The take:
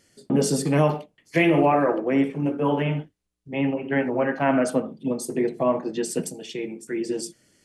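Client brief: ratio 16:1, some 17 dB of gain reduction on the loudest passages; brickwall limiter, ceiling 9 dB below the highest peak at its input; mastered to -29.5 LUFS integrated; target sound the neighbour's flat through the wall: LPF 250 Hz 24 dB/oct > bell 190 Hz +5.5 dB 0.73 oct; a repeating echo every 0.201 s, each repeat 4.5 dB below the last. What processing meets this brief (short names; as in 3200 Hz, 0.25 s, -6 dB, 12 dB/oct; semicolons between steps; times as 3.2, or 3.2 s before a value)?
compressor 16:1, threshold -32 dBFS; limiter -31 dBFS; LPF 250 Hz 24 dB/oct; bell 190 Hz +5.5 dB 0.73 oct; feedback echo 0.201 s, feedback 60%, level -4.5 dB; gain +13 dB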